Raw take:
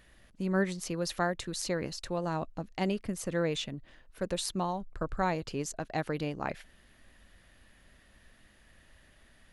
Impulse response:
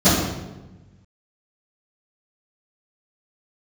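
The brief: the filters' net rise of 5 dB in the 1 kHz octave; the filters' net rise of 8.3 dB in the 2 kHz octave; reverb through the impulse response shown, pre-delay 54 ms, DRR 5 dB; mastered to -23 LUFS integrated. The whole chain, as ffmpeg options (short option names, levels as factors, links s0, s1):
-filter_complex "[0:a]equalizer=f=1000:t=o:g=4.5,equalizer=f=2000:t=o:g=9,asplit=2[s0][s1];[1:a]atrim=start_sample=2205,adelay=54[s2];[s1][s2]afir=irnorm=-1:irlink=0,volume=0.0376[s3];[s0][s3]amix=inputs=2:normalize=0,volume=1.5"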